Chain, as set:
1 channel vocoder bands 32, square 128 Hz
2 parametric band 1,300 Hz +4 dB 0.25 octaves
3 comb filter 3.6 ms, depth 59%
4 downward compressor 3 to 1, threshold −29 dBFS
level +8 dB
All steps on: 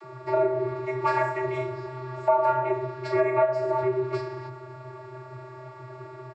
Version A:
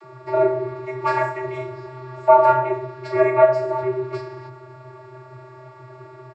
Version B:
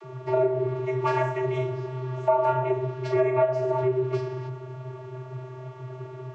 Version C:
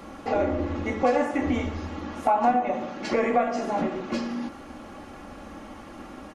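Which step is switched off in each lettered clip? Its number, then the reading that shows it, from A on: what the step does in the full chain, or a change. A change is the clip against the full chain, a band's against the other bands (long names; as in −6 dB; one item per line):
4, change in integrated loudness +6.5 LU
3, 125 Hz band +7.0 dB
1, 250 Hz band +7.5 dB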